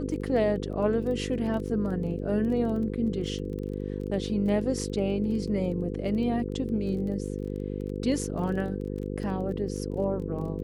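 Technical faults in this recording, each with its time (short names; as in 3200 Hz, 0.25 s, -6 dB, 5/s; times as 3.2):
buzz 50 Hz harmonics 10 -33 dBFS
crackle 16/s -36 dBFS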